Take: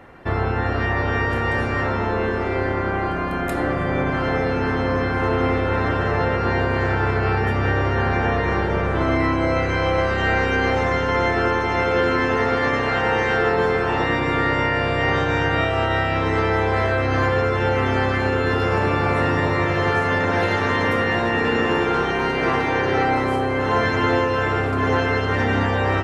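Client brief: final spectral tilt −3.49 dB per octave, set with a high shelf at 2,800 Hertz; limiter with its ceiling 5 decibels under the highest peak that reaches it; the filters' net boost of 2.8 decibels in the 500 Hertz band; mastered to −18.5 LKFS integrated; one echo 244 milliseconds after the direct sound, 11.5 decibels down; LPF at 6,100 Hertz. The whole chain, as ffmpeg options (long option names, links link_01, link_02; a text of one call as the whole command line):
ffmpeg -i in.wav -af "lowpass=6100,equalizer=frequency=500:width_type=o:gain=3.5,highshelf=frequency=2800:gain=-6.5,alimiter=limit=-11dB:level=0:latency=1,aecho=1:1:244:0.266,volume=2dB" out.wav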